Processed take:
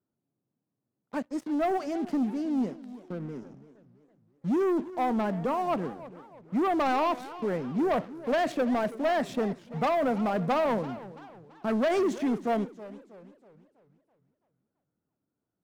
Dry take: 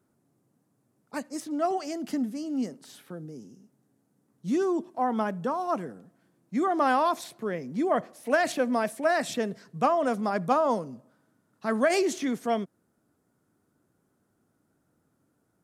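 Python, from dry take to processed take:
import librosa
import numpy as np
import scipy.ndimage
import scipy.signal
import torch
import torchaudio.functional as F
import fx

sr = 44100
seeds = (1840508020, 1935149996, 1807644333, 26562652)

y = fx.lowpass(x, sr, hz=1200.0, slope=6)
y = fx.leveller(y, sr, passes=3)
y = fx.echo_warbled(y, sr, ms=327, feedback_pct=44, rate_hz=2.8, cents=212, wet_db=-16.5)
y = F.gain(torch.from_numpy(y), -7.5).numpy()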